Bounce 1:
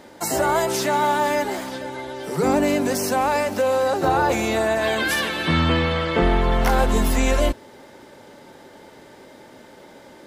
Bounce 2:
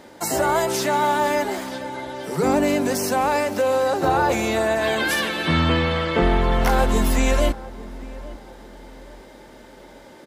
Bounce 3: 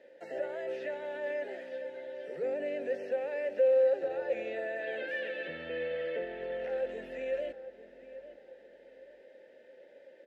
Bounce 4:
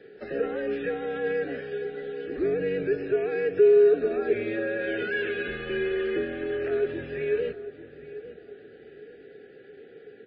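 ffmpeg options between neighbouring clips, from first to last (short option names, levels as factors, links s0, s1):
-filter_complex "[0:a]asplit=2[s0][s1];[s1]adelay=845,lowpass=f=1200:p=1,volume=0.133,asplit=2[s2][s3];[s3]adelay=845,lowpass=f=1200:p=1,volume=0.37,asplit=2[s4][s5];[s5]adelay=845,lowpass=f=1200:p=1,volume=0.37[s6];[s0][s2][s4][s6]amix=inputs=4:normalize=0"
-filter_complex "[0:a]alimiter=limit=0.188:level=0:latency=1:release=20,acrossover=split=3400[s0][s1];[s1]acompressor=threshold=0.00794:ratio=4:attack=1:release=60[s2];[s0][s2]amix=inputs=2:normalize=0,asplit=3[s3][s4][s5];[s3]bandpass=f=530:t=q:w=8,volume=1[s6];[s4]bandpass=f=1840:t=q:w=8,volume=0.501[s7];[s5]bandpass=f=2480:t=q:w=8,volume=0.355[s8];[s6][s7][s8]amix=inputs=3:normalize=0,volume=0.75"
-af "afreqshift=-110,volume=2.51" -ar 12000 -c:a libmp3lame -b:a 16k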